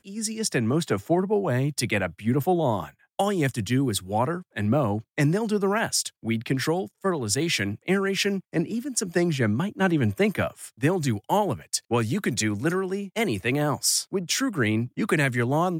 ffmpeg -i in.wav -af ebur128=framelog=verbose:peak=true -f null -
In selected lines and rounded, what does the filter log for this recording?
Integrated loudness:
  I:         -25.2 LUFS
  Threshold: -35.2 LUFS
Loudness range:
  LRA:         0.9 LU
  Threshold: -45.3 LUFS
  LRA low:   -25.8 LUFS
  LRA high:  -24.9 LUFS
True peak:
  Peak:       -9.6 dBFS